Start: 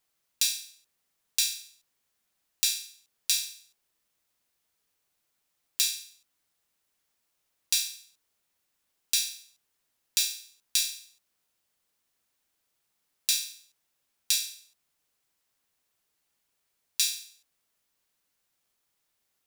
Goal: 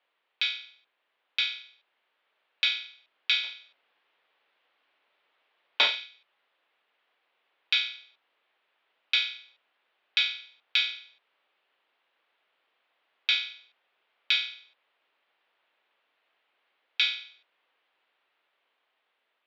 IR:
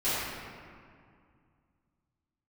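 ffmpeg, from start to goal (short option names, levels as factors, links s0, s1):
-filter_complex "[0:a]asplit=3[s0][s1][s2];[s0]afade=t=out:st=3.43:d=0.02[s3];[s1]aeval=exprs='0.631*(cos(1*acos(clip(val(0)/0.631,-1,1)))-cos(1*PI/2))+0.0355*(cos(5*acos(clip(val(0)/0.631,-1,1)))-cos(5*PI/2))+0.0501*(cos(8*acos(clip(val(0)/0.631,-1,1)))-cos(8*PI/2))':c=same,afade=t=in:st=3.43:d=0.02,afade=t=out:st=6.05:d=0.02[s4];[s2]afade=t=in:st=6.05:d=0.02[s5];[s3][s4][s5]amix=inputs=3:normalize=0,dynaudnorm=f=800:g=5:m=3.76,highpass=f=590:t=q:w=0.5412,highpass=f=590:t=q:w=1.307,lowpass=f=3500:t=q:w=0.5176,lowpass=f=3500:t=q:w=0.7071,lowpass=f=3500:t=q:w=1.932,afreqshift=-160,volume=2.51"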